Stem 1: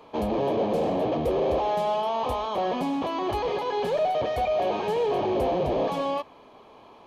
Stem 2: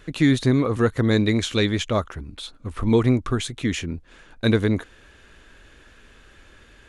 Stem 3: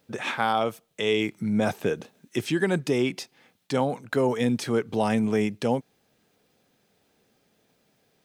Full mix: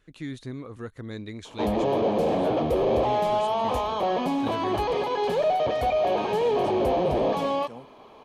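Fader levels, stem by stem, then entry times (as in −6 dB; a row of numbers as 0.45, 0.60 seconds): +1.5, −17.5, −19.0 decibels; 1.45, 0.00, 2.05 seconds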